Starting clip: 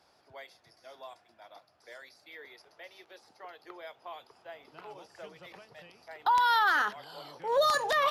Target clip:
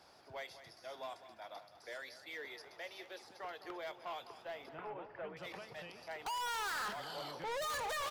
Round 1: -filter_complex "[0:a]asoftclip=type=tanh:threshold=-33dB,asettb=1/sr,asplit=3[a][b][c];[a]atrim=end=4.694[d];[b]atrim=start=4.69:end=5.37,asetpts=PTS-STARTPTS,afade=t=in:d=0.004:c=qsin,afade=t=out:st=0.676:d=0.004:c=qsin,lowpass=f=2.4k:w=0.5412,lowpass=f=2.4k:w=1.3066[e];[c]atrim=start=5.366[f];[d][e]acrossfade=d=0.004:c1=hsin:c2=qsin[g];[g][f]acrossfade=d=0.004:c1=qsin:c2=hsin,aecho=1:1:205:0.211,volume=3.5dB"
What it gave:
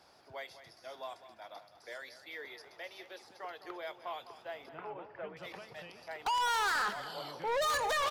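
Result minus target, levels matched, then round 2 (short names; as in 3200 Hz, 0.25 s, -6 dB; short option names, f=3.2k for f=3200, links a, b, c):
soft clip: distortion -5 dB
-filter_complex "[0:a]asoftclip=type=tanh:threshold=-41.5dB,asettb=1/sr,asplit=3[a][b][c];[a]atrim=end=4.694[d];[b]atrim=start=4.69:end=5.37,asetpts=PTS-STARTPTS,afade=t=in:d=0.004:c=qsin,afade=t=out:st=0.676:d=0.004:c=qsin,lowpass=f=2.4k:w=0.5412,lowpass=f=2.4k:w=1.3066[e];[c]atrim=start=5.366[f];[d][e]acrossfade=d=0.004:c1=hsin:c2=qsin[g];[g][f]acrossfade=d=0.004:c1=qsin:c2=hsin,aecho=1:1:205:0.211,volume=3.5dB"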